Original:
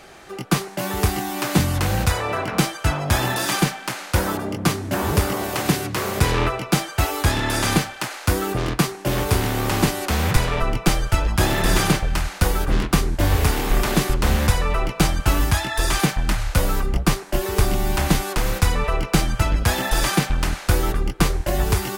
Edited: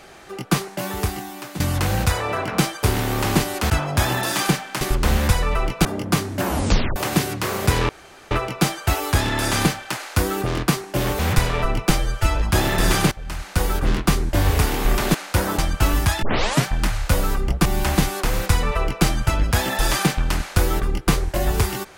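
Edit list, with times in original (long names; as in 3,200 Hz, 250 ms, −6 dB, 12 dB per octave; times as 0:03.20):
0:00.66–0:01.60: fade out, to −15.5 dB
0:03.94–0:04.38: swap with 0:14.00–0:15.04
0:04.98: tape stop 0.51 s
0:06.42: splice in room tone 0.42 s
0:09.30–0:10.17: move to 0:02.83
0:10.96–0:11.21: time-stretch 1.5×
0:11.97–0:12.57: fade in linear, from −18 dB
0:15.68: tape start 0.43 s
0:17.11–0:17.78: remove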